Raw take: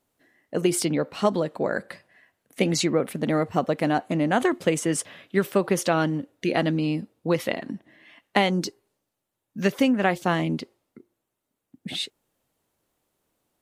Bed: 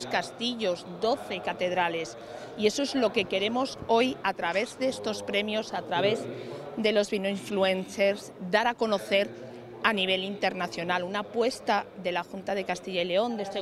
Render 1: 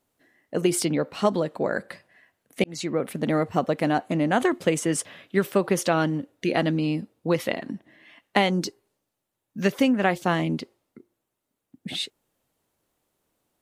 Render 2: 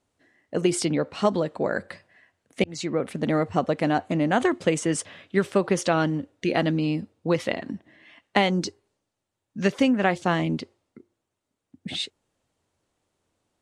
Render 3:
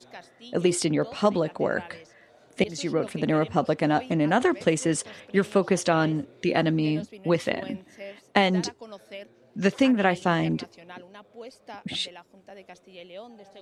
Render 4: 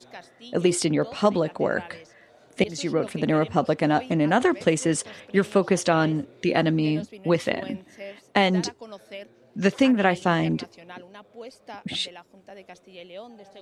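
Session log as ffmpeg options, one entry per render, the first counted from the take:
-filter_complex "[0:a]asplit=2[a][b];[a]atrim=end=2.64,asetpts=PTS-STARTPTS,afade=t=out:st=2.636:d=0.004:c=hsin[c];[b]atrim=start=2.64,asetpts=PTS-STARTPTS,afade=t=in:d=0.65:c=qsin[d];[c][d]concat=n=2:v=0:a=1"
-af "lowpass=f=9k:w=0.5412,lowpass=f=9k:w=1.3066,equalizer=f=89:t=o:w=0.33:g=10"
-filter_complex "[1:a]volume=-16dB[a];[0:a][a]amix=inputs=2:normalize=0"
-af "volume=1.5dB,alimiter=limit=-3dB:level=0:latency=1"

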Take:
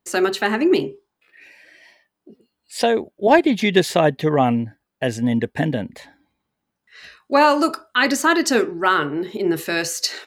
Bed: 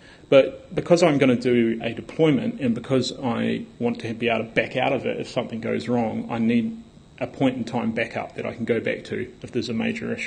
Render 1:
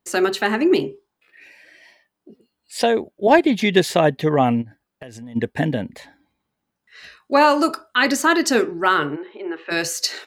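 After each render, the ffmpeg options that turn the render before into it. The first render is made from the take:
-filter_complex "[0:a]asplit=3[a][b][c];[a]afade=t=out:st=4.61:d=0.02[d];[b]acompressor=threshold=-33dB:ratio=12:attack=3.2:release=140:knee=1:detection=peak,afade=t=in:st=4.61:d=0.02,afade=t=out:st=5.35:d=0.02[e];[c]afade=t=in:st=5.35:d=0.02[f];[d][e][f]amix=inputs=3:normalize=0,asplit=3[g][h][i];[g]afade=t=out:st=9.15:d=0.02[j];[h]highpass=f=390:w=0.5412,highpass=f=390:w=1.3066,equalizer=f=430:t=q:w=4:g=-9,equalizer=f=680:t=q:w=4:g=-7,equalizer=f=2k:t=q:w=4:g=-5,lowpass=f=2.6k:w=0.5412,lowpass=f=2.6k:w=1.3066,afade=t=in:st=9.15:d=0.02,afade=t=out:st=9.7:d=0.02[k];[i]afade=t=in:st=9.7:d=0.02[l];[j][k][l]amix=inputs=3:normalize=0"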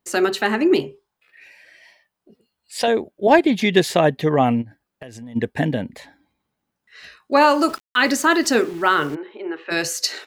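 -filter_complex "[0:a]asettb=1/sr,asplit=3[a][b][c];[a]atrim=end=0.814[d];[b]atrim=start=0.81:end=2.88,asetpts=PTS-STARTPTS,afade=t=in:d=0.004:c=qsin,afade=t=out:st=2.066:d=0.004:c=qsin,equalizer=f=300:t=o:w=0.97:g=-9.5[e];[c]atrim=start=2.876[f];[d][e]acrossfade=d=0.004:c1=hsin:c2=qsin[g];[g][f]acrossfade=d=0.004:c1=qsin:c2=hsin,asettb=1/sr,asplit=3[h][i][j];[h]atrim=end=7.444[k];[i]atrim=start=7.44:end=9.15,asetpts=PTS-STARTPTS,afade=t=in:d=0.004:c=qsin,afade=t=out:st=1.706:d=0.004:c=qsin,aeval=exprs='val(0)*gte(abs(val(0)),0.015)':c=same[l];[j]atrim=start=9.146[m];[k][l]acrossfade=d=0.004:c1=hsin:c2=qsin[n];[n][m]acrossfade=d=0.004:c1=qsin:c2=hsin"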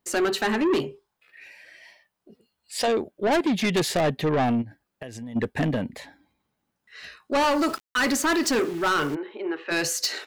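-af "asoftclip=type=tanh:threshold=-18.5dB"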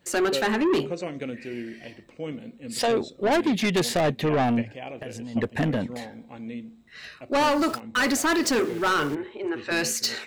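-filter_complex "[1:a]volume=-15.5dB[a];[0:a][a]amix=inputs=2:normalize=0"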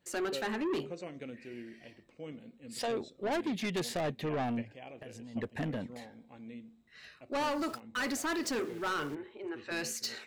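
-af "volume=-11dB"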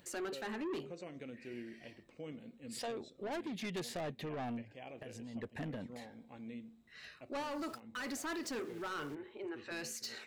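-af "alimiter=level_in=12dB:limit=-24dB:level=0:latency=1:release=259,volume=-12dB,acompressor=mode=upward:threshold=-57dB:ratio=2.5"

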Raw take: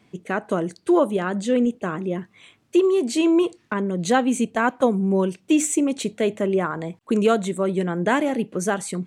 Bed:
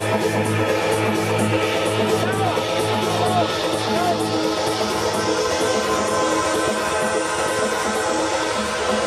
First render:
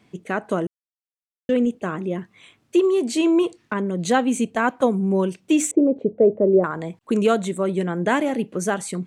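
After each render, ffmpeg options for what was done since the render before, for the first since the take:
-filter_complex "[0:a]asettb=1/sr,asplit=3[a][b][c];[a]atrim=end=5.714[d];[b]atrim=start=5.71:end=6.64,asetpts=PTS-STARTPTS,afade=t=in:d=0.004:c=qsin,afade=t=out:st=0.926:d=0.004:c=qsin,lowpass=f=510:t=q:w=2.8[e];[c]atrim=start=6.636[f];[d][e]acrossfade=d=0.004:c1=hsin:c2=qsin[g];[g][f]acrossfade=d=0.004:c1=qsin:c2=hsin,asplit=3[h][i][j];[h]atrim=end=0.67,asetpts=PTS-STARTPTS,afade=t=out:st=0.666:d=0.004:c=hsin[k];[i]atrim=start=0.67:end=1.49,asetpts=PTS-STARTPTS,volume=0[l];[j]atrim=start=1.49,asetpts=PTS-STARTPTS,afade=t=in:d=0.004:c=hsin[m];[k][l][m]concat=n=3:v=0:a=1"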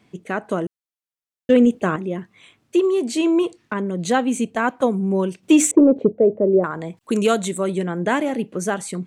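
-filter_complex "[0:a]asettb=1/sr,asplit=3[a][b][c];[a]atrim=end=5.434[d];[b]atrim=start=5.43:end=6.12,asetpts=PTS-STARTPTS,afade=t=in:d=0.004:c=qsin,afade=t=out:st=0.686:d=0.004:c=qsin,acontrast=40[e];[c]atrim=start=6.116[f];[d][e]acrossfade=d=0.004:c1=hsin:c2=qsin[g];[g][f]acrossfade=d=0.004:c1=qsin:c2=hsin,asettb=1/sr,asplit=3[h][i][j];[h]atrim=end=6.974[k];[i]atrim=start=6.97:end=7.78,asetpts=PTS-STARTPTS,afade=t=in:d=0.004:c=qsin,afade=t=out:st=0.806:d=0.004:c=qsin,highshelf=f=3.2k:g=9[l];[j]atrim=start=7.776[m];[k][l]acrossfade=d=0.004:c1=hsin:c2=qsin[n];[n][m]acrossfade=d=0.004:c1=qsin:c2=hsin,asplit=3[o][p][q];[o]atrim=end=1.502[r];[p]atrim=start=1.498:end=1.962,asetpts=PTS-STARTPTS,volume=6dB[s];[q]atrim=start=1.958[t];[r][s]acrossfade=d=0.004:c1=hsin:c2=hsin[u];[u][t]acrossfade=d=0.004:c1=hsin:c2=hsin"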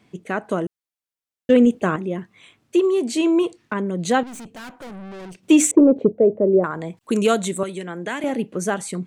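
-filter_complex "[0:a]asettb=1/sr,asplit=3[a][b][c];[a]atrim=end=4.234[d];[b]atrim=start=4.23:end=5.38,asetpts=PTS-STARTPTS,afade=t=in:d=0.004:c=qsin,afade=t=out:st=1.146:d=0.004:c=qsin,aeval=exprs='(tanh(56.2*val(0)+0.4)-tanh(0.4))/56.2':c=same[e];[c]atrim=start=5.376[f];[d][e]acrossfade=d=0.004:c1=hsin:c2=qsin[g];[g][f]acrossfade=d=0.004:c1=qsin:c2=hsin,asettb=1/sr,asplit=3[h][i][j];[h]atrim=end=7.634[k];[i]atrim=start=7.63:end=8.24,asetpts=PTS-STARTPTS,afade=t=in:d=0.004:c=qsin,afade=t=out:st=0.606:d=0.004:c=qsin,acrossover=split=240|1500[l][m][n];[l]acompressor=threshold=-40dB:ratio=4[o];[m]acompressor=threshold=-30dB:ratio=4[p];[n]acompressor=threshold=-28dB:ratio=4[q];[o][p][q]amix=inputs=3:normalize=0[r];[j]atrim=start=8.236[s];[k][r]acrossfade=d=0.004:c1=hsin:c2=qsin[t];[t][s]acrossfade=d=0.004:c1=qsin:c2=hsin"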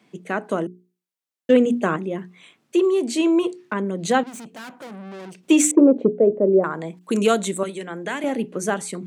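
-af "highpass=f=150:w=0.5412,highpass=f=150:w=1.3066,bandreject=f=60:t=h:w=6,bandreject=f=120:t=h:w=6,bandreject=f=180:t=h:w=6,bandreject=f=240:t=h:w=6,bandreject=f=300:t=h:w=6,bandreject=f=360:t=h:w=6,bandreject=f=420:t=h:w=6"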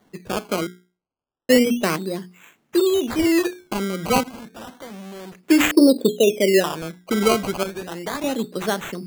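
-af "acrusher=samples=17:mix=1:aa=0.000001:lfo=1:lforange=17:lforate=0.31"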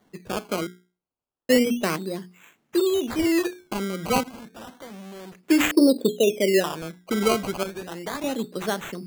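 -af "volume=-3.5dB"

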